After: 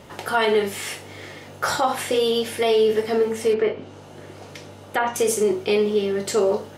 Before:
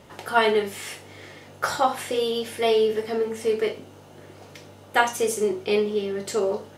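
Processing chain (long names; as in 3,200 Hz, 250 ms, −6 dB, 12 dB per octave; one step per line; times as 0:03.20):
brickwall limiter −16 dBFS, peak gain reduction 11 dB
0:03.53–0:05.16: treble cut that deepens with the level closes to 2,100 Hz, closed at −24 dBFS
level +5 dB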